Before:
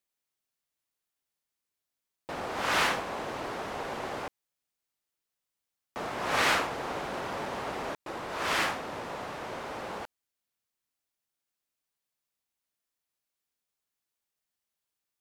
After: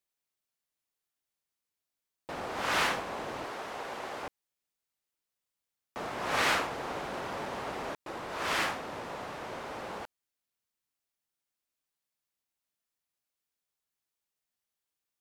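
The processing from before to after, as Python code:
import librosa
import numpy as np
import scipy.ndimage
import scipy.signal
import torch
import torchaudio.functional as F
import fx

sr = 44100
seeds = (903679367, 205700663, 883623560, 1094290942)

y = fx.low_shelf(x, sr, hz=260.0, db=-10.0, at=(3.44, 4.23))
y = y * librosa.db_to_amplitude(-2.0)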